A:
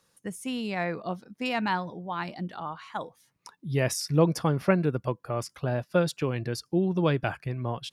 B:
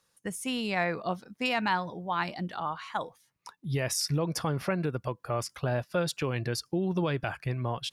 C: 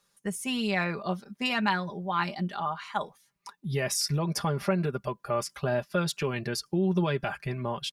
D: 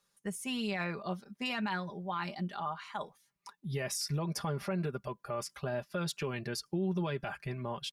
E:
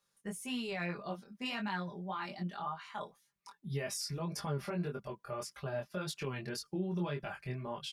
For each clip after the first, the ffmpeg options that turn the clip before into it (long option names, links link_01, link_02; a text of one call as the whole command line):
ffmpeg -i in.wav -af "agate=range=-7dB:threshold=-49dB:ratio=16:detection=peak,alimiter=limit=-20dB:level=0:latency=1:release=199,equalizer=frequency=240:width_type=o:width=2.5:gain=-5,volume=4dB" out.wav
ffmpeg -i in.wav -af "aecho=1:1:5:0.65" out.wav
ffmpeg -i in.wav -af "alimiter=limit=-20dB:level=0:latency=1:release=33,volume=-5.5dB" out.wav
ffmpeg -i in.wav -af "flanger=delay=20:depth=3.5:speed=1.8" out.wav